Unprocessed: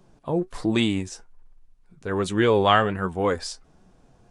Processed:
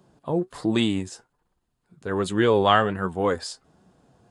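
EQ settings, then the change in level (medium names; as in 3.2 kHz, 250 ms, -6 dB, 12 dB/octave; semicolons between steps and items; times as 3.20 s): high-pass 85 Hz 12 dB/octave; peaking EQ 2.3 kHz -5 dB 0.31 oct; band-stop 5.8 kHz, Q 8.2; 0.0 dB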